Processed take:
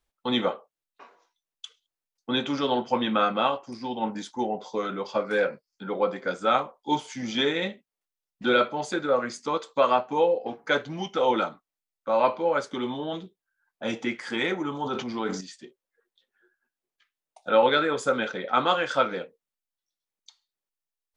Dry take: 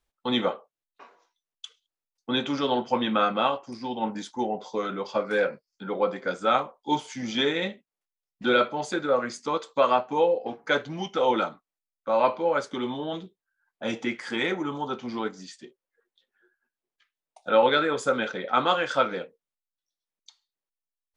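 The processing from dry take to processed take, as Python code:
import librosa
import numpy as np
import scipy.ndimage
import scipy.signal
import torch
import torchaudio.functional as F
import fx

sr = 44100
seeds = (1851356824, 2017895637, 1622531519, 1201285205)

y = fx.sustainer(x, sr, db_per_s=61.0, at=(14.79, 15.41))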